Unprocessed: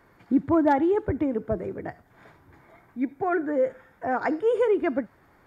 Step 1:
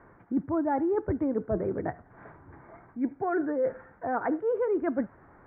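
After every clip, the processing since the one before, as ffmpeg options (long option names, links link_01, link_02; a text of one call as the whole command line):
ffmpeg -i in.wav -af "areverse,acompressor=threshold=-29dB:ratio=6,areverse,lowpass=frequency=1700:width=0.5412,lowpass=frequency=1700:width=1.3066,volume=4dB" out.wav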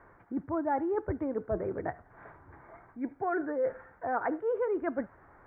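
ffmpeg -i in.wav -af "equalizer=frequency=200:width=0.68:gain=-7.5" out.wav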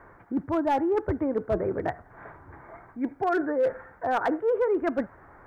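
ffmpeg -i in.wav -af "asoftclip=type=hard:threshold=-24.5dB,volume=6dB" out.wav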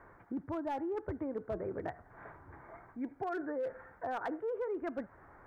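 ffmpeg -i in.wav -af "acompressor=threshold=-30dB:ratio=3,volume=-6dB" out.wav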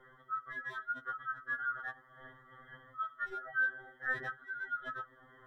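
ffmpeg -i in.wav -af "afftfilt=real='real(if(lt(b,960),b+48*(1-2*mod(floor(b/48),2)),b),0)':imag='imag(if(lt(b,960),b+48*(1-2*mod(floor(b/48),2)),b),0)':win_size=2048:overlap=0.75,afftfilt=real='re*2.45*eq(mod(b,6),0)':imag='im*2.45*eq(mod(b,6),0)':win_size=2048:overlap=0.75" out.wav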